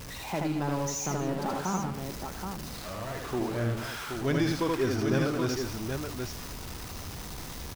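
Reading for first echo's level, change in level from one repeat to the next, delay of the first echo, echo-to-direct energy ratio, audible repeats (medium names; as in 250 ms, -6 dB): -2.5 dB, no regular repeats, 77 ms, -0.5 dB, 3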